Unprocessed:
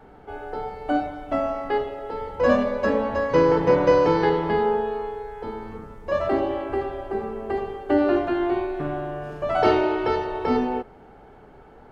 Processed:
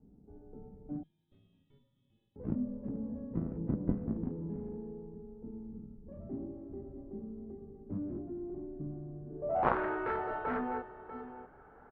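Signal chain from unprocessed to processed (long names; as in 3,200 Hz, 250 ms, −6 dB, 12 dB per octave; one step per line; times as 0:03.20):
on a send: single-tap delay 643 ms −13.5 dB
0:07.21–0:07.90: on the sum: downward compressor 2.5 to 1, threshold −28 dBFS, peak gain reduction 5 dB
hum removal 112 Hz, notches 3
0:01.03–0:02.36: voice inversion scrambler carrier 3,900 Hz
harmonic generator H 3 −7 dB, 6 −44 dB, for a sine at −5.5 dBFS
hard clipping −9.5 dBFS, distortion −21 dB
low-pass filter sweep 220 Hz → 1,500 Hz, 0:09.24–0:09.80
level −1.5 dB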